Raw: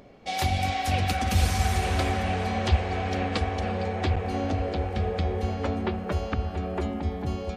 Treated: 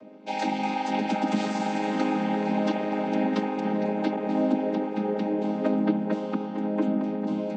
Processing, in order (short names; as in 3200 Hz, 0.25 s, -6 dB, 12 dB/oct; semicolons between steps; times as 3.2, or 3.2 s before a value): chord vocoder major triad, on G#3; gain +4.5 dB